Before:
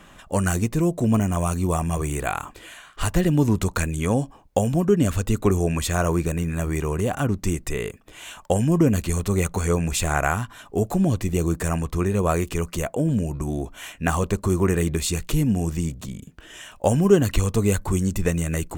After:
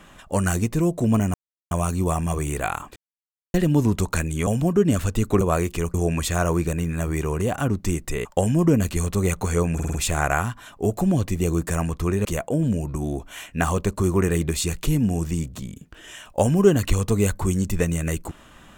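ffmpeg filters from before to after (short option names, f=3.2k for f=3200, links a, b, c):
-filter_complex "[0:a]asplit=13[a][b][c][d][e][f][g][h][i][j][k][l][m];[a]atrim=end=1.34,asetpts=PTS-STARTPTS,afade=t=out:st=1.336:d=0.004:c=hsin,apad=pad_dur=0.37[n];[b]atrim=start=1.34:end=2.59,asetpts=PTS-STARTPTS,afade=t=in:d=0.004:c=hsin,afade=t=out:st=1.246:d=0.004:c=hsin[o];[c]atrim=start=2.59:end=3.17,asetpts=PTS-STARTPTS,volume=0[p];[d]atrim=start=3.17:end=4.102,asetpts=PTS-STARTPTS,afade=t=in:d=0.004:c=hsin[q];[e]atrim=start=4.588:end=5.532[r];[f]atrim=start=12.178:end=12.712[s];[g]atrim=start=5.528:end=7.842[t];[h]atrim=start=8.378:end=9.922[u];[i]atrim=start=9.868:end=9.922[v];[j]atrim=start=9.868:end=9.922[w];[k]atrim=start=9.868:end=9.922[x];[l]atrim=start=9.868:end=12.182[y];[m]atrim=start=12.708[z];[n][o][p][q]concat=n=4:v=0:a=1[aa];[aa][r]acrossfade=d=0.004:c1=hsin:c2=hsin[ab];[ab][s]acrossfade=d=0.004:c1=hsin:c2=hsin[ac];[ac][t]acrossfade=d=0.004:c1=hsin:c2=hsin[ad];[ad][u]acrossfade=d=0.004:c1=hsin:c2=hsin[ae];[ae][v]acrossfade=d=0.004:c1=hsin:c2=hsin[af];[af][w]acrossfade=d=0.004:c1=hsin:c2=hsin[ag];[ag][x]acrossfade=d=0.004:c1=hsin:c2=hsin[ah];[ah][y]acrossfade=d=0.004:c1=hsin:c2=hsin[ai];[ai][z]acrossfade=d=0.004:c1=hsin:c2=hsin"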